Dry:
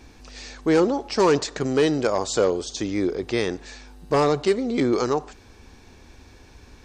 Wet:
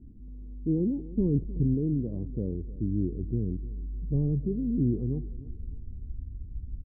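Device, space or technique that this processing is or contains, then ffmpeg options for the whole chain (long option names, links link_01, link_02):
the neighbour's flat through the wall: -filter_complex "[0:a]lowpass=frequency=270:width=0.5412,lowpass=frequency=270:width=1.3066,equalizer=frequency=190:width_type=o:width=0.71:gain=4,asettb=1/sr,asplit=3[link_01][link_02][link_03];[link_01]atrim=end=1.164[link_04];[link_02]atrim=start=1.16:end=1.75,asetpts=PTS-STARTPTS,afade=type=in:duration=0.004:curve=qsin,afade=type=out:start_time=0.586:duration=0.004:curve=qsin,lowshelf=frequency=160:gain=6.5[link_05];[link_03]atrim=start=1.746[link_06];[link_04][link_05]acrossfade=duration=0.004:curve1=hsin:curve2=qsin[link_07];[link_07][link_06]acrossfade=duration=0.004:curve1=qsin:curve2=hsin,aecho=1:1:303|606|909:0.126|0.0504|0.0201,asubboost=boost=5.5:cutoff=100"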